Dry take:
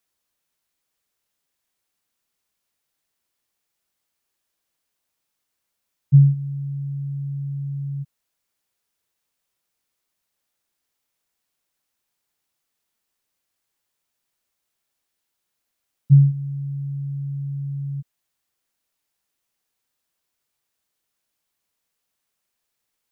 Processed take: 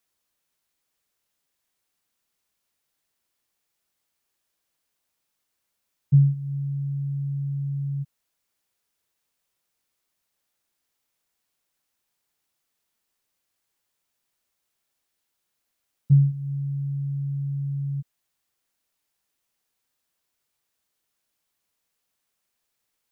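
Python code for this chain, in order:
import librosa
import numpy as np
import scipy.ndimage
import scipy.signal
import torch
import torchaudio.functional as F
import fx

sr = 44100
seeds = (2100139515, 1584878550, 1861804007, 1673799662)

y = fx.dynamic_eq(x, sr, hz=130.0, q=2.4, threshold_db=-25.0, ratio=4.0, max_db=-5)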